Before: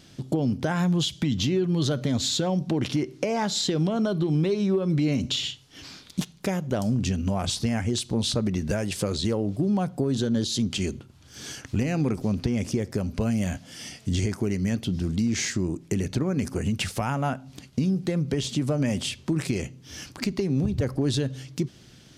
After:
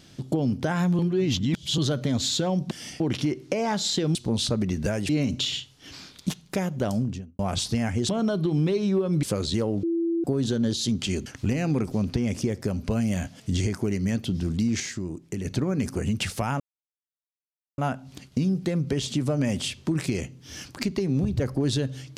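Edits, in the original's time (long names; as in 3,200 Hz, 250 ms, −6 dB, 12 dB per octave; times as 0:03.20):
0:00.99–0:01.78: reverse
0:03.86–0:05.00: swap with 0:08.00–0:08.94
0:06.79–0:07.30: fade out and dull
0:09.54–0:09.95: beep over 335 Hz −22 dBFS
0:10.97–0:11.56: remove
0:13.70–0:13.99: move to 0:02.71
0:15.39–0:16.04: clip gain −5.5 dB
0:17.19: splice in silence 1.18 s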